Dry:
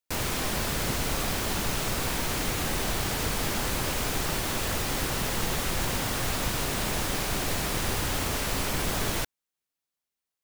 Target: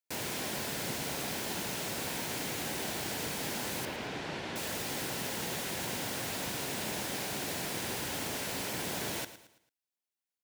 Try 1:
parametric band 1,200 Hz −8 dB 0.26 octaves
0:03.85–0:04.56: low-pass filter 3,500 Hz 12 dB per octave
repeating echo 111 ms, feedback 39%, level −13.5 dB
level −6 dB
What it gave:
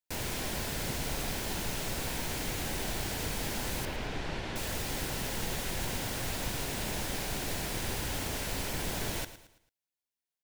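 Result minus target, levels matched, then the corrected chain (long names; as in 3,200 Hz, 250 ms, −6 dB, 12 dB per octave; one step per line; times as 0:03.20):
125 Hz band +5.0 dB
high-pass filter 150 Hz 12 dB per octave
parametric band 1,200 Hz −8 dB 0.26 octaves
0:03.85–0:04.56: low-pass filter 3,500 Hz 12 dB per octave
repeating echo 111 ms, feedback 39%, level −13.5 dB
level −6 dB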